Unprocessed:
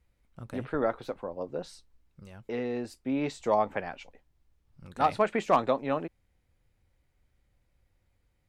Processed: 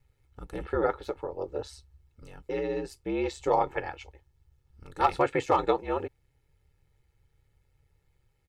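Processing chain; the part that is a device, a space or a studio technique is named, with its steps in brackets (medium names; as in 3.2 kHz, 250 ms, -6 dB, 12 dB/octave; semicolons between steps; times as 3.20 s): ring-modulated robot voice (ring modulator 68 Hz; comb 2.3 ms, depth 71%); trim +2.5 dB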